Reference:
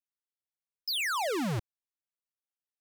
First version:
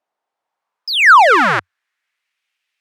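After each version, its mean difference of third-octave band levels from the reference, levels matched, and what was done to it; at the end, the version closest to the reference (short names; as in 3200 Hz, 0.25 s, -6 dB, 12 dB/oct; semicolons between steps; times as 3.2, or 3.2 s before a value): 6.5 dB: bell 90 Hz -7 dB 0.22 oct; band-pass sweep 720 Hz -> 2400 Hz, 0.17–2.45; maximiser +32.5 dB; gain -1 dB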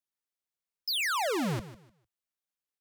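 1.5 dB: bell 100 Hz -14.5 dB 0.24 oct; feedback echo 0.151 s, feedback 24%, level -15 dB; gain +1 dB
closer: second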